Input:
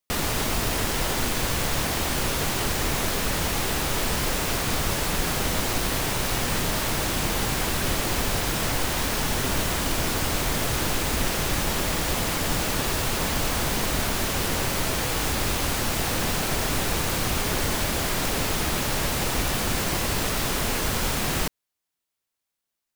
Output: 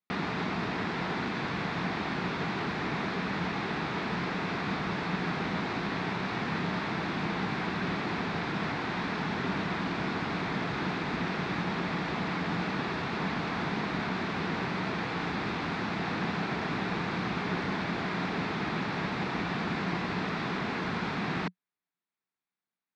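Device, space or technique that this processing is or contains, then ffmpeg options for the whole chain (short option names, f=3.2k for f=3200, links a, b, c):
kitchen radio: -af "highpass=170,equalizer=f=180:t=q:w=4:g=9,equalizer=f=550:t=q:w=4:g=-9,equalizer=f=3k:t=q:w=4:g=-9,lowpass=f=3.5k:w=0.5412,lowpass=f=3.5k:w=1.3066,volume=-3dB"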